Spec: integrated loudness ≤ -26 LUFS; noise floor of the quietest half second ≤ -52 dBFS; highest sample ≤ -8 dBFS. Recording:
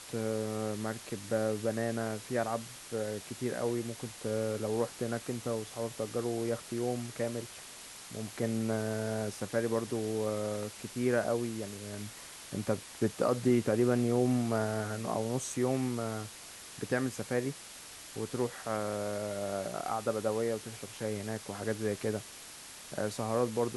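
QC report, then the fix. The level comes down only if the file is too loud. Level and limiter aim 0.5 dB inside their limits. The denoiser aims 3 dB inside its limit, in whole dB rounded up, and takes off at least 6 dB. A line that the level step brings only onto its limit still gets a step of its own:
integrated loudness -34.0 LUFS: OK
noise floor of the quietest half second -49 dBFS: fail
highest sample -15.5 dBFS: OK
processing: denoiser 6 dB, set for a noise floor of -49 dBFS

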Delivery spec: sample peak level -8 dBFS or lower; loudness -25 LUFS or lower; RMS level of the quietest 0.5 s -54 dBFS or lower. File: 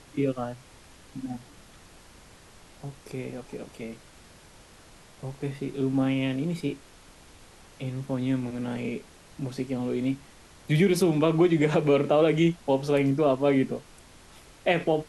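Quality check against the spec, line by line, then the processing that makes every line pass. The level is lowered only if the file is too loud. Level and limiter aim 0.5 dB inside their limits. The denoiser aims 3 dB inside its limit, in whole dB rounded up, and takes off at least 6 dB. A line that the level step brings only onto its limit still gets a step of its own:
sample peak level -10.5 dBFS: OK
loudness -26.5 LUFS: OK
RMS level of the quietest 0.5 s -52 dBFS: fail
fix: denoiser 6 dB, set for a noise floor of -52 dBFS

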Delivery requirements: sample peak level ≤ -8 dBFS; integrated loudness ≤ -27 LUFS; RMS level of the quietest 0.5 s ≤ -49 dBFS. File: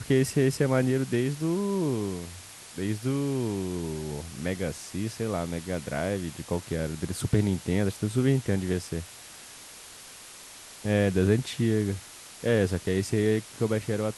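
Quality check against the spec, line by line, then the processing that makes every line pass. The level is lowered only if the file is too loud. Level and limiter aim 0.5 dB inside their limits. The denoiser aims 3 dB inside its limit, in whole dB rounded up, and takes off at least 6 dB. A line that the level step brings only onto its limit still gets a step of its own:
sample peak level -10.0 dBFS: OK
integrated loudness -28.0 LUFS: OK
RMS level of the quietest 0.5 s -46 dBFS: fail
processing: denoiser 6 dB, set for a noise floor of -46 dBFS

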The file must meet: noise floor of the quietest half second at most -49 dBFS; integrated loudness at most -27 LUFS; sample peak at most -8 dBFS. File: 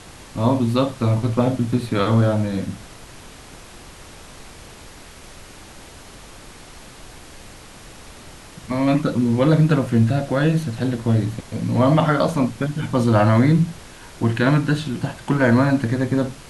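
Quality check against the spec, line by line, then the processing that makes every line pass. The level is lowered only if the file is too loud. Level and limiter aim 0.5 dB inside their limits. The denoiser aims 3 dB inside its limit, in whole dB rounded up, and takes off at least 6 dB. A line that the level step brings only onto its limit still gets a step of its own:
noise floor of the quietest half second -41 dBFS: fail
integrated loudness -19.5 LUFS: fail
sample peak -4.0 dBFS: fail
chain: denoiser 6 dB, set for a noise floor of -41 dBFS; gain -8 dB

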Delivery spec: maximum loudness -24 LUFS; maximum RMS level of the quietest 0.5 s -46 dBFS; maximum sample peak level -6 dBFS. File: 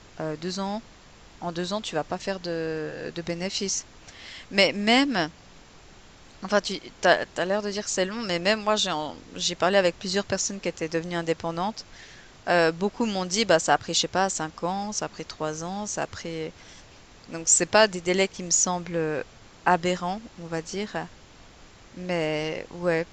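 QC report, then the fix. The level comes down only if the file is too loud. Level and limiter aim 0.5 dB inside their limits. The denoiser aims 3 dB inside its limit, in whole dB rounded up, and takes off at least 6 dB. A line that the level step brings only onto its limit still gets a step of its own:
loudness -26.0 LUFS: OK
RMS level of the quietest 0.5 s -50 dBFS: OK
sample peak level -5.5 dBFS: fail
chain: limiter -6.5 dBFS

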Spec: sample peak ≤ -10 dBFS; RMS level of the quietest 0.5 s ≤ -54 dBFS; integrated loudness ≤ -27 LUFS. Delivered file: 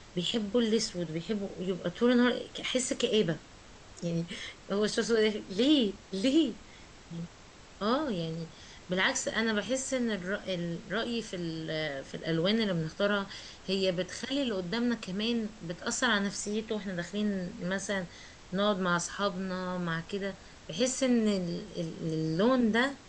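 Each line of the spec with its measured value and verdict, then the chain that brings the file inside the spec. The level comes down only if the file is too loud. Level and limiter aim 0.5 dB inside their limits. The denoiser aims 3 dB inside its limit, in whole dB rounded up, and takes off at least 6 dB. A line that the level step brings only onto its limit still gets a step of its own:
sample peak -14.0 dBFS: OK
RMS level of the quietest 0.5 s -52 dBFS: fail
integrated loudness -31.0 LUFS: OK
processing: denoiser 6 dB, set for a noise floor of -52 dBFS

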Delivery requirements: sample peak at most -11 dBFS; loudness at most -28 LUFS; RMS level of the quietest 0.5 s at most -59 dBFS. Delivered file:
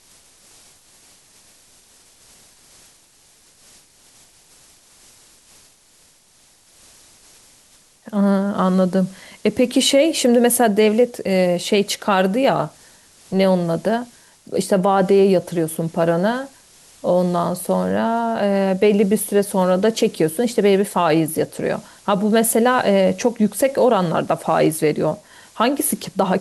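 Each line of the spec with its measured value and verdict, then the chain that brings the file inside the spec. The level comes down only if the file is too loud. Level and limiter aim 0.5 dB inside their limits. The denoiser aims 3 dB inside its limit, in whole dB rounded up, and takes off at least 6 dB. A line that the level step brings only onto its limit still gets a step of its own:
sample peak -5.5 dBFS: fail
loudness -18.0 LUFS: fail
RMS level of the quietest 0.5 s -54 dBFS: fail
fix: gain -10.5 dB

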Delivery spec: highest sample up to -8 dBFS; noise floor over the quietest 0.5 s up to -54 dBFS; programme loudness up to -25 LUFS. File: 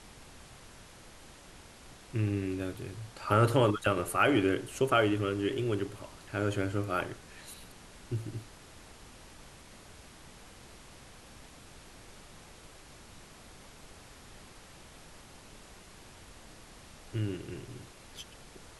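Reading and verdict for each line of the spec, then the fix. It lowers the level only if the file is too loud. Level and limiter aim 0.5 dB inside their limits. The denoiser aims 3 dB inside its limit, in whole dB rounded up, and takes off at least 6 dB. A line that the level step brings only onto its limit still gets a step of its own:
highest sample -12.0 dBFS: OK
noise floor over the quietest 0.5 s -52 dBFS: fail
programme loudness -31.0 LUFS: OK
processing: denoiser 6 dB, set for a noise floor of -52 dBFS

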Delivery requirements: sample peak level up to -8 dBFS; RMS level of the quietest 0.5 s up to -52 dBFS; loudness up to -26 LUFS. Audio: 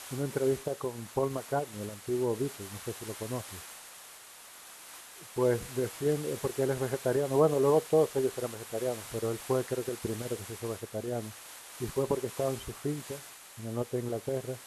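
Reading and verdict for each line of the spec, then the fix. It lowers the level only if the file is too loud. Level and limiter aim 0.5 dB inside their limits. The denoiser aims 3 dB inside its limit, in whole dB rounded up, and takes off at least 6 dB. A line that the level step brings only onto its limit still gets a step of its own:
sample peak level -12.0 dBFS: OK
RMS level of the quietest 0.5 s -51 dBFS: fail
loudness -32.5 LUFS: OK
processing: denoiser 6 dB, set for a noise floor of -51 dBFS

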